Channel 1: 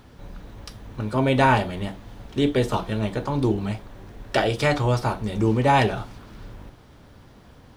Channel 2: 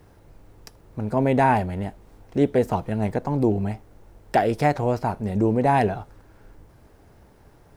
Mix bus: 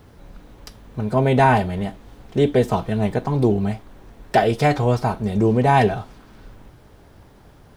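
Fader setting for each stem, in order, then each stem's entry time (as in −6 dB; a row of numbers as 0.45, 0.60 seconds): −3.5, +2.0 decibels; 0.00, 0.00 seconds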